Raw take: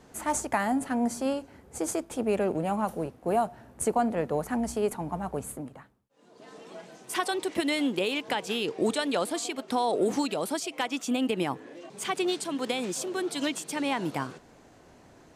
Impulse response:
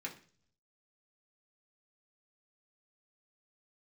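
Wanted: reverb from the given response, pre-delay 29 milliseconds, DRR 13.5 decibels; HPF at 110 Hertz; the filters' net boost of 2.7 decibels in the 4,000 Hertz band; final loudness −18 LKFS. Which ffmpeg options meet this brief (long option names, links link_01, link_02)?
-filter_complex "[0:a]highpass=110,equalizer=frequency=4000:width_type=o:gain=3.5,asplit=2[link_01][link_02];[1:a]atrim=start_sample=2205,adelay=29[link_03];[link_02][link_03]afir=irnorm=-1:irlink=0,volume=-13.5dB[link_04];[link_01][link_04]amix=inputs=2:normalize=0,volume=11dB"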